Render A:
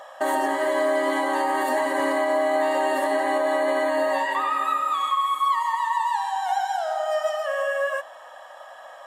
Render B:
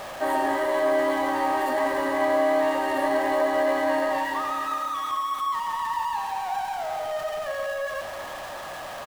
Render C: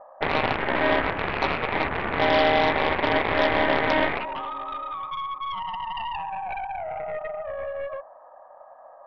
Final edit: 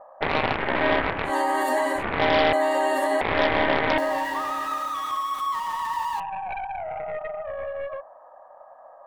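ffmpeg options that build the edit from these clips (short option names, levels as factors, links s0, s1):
-filter_complex "[0:a]asplit=2[s0][s1];[2:a]asplit=4[s2][s3][s4][s5];[s2]atrim=end=1.33[s6];[s0]atrim=start=1.23:end=2.04[s7];[s3]atrim=start=1.94:end=2.532[s8];[s1]atrim=start=2.528:end=3.212[s9];[s4]atrim=start=3.208:end=3.982[s10];[1:a]atrim=start=3.978:end=6.202[s11];[s5]atrim=start=6.198[s12];[s6][s7]acrossfade=d=0.1:c1=tri:c2=tri[s13];[s13][s8]acrossfade=d=0.1:c1=tri:c2=tri[s14];[s14][s9]acrossfade=d=0.004:c1=hsin:c2=hsin[s15];[s15][s10]acrossfade=d=0.004:c1=hsin:c2=hsin[s16];[s16][s11]acrossfade=d=0.004:c1=hsin:c2=hsin[s17];[s17][s12]acrossfade=d=0.004:c1=hsin:c2=hsin"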